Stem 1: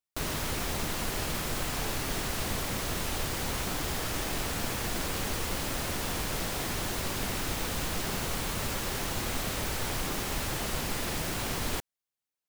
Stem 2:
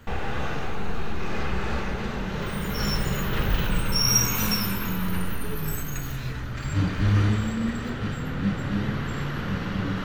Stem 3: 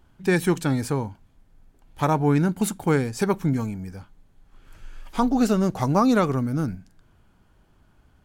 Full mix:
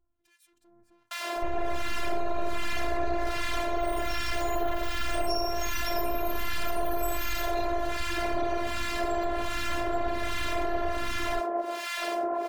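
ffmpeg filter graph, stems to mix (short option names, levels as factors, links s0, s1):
-filter_complex "[0:a]lowpass=f=1900:p=1,acontrast=72,highpass=f=530:t=q:w=4.9,adelay=950,volume=1[s0];[1:a]aecho=1:1:3.4:0.47,alimiter=limit=0.141:level=0:latency=1:release=202,acrossover=split=91|450[s1][s2][s3];[s1]acompressor=threshold=0.0224:ratio=4[s4];[s2]acompressor=threshold=0.00562:ratio=4[s5];[s3]acompressor=threshold=0.0112:ratio=4[s6];[s4][s5][s6]amix=inputs=3:normalize=0,adelay=1350,volume=0.708[s7];[2:a]acompressor=threshold=0.0447:ratio=4,aeval=exprs='(tanh(89.1*val(0)+0.25)-tanh(0.25))/89.1':c=same,volume=0.188[s8];[s0][s8]amix=inputs=2:normalize=0,acrossover=split=1300[s9][s10];[s9]aeval=exprs='val(0)*(1-1/2+1/2*cos(2*PI*1.3*n/s))':c=same[s11];[s10]aeval=exprs='val(0)*(1-1/2-1/2*cos(2*PI*1.3*n/s))':c=same[s12];[s11][s12]amix=inputs=2:normalize=0,alimiter=level_in=1.12:limit=0.0631:level=0:latency=1:release=479,volume=0.891,volume=1[s13];[s7][s13]amix=inputs=2:normalize=0,dynaudnorm=f=810:g=3:m=3.16,afftfilt=real='hypot(re,im)*cos(PI*b)':imag='0':win_size=512:overlap=0.75,asoftclip=type=tanh:threshold=0.168"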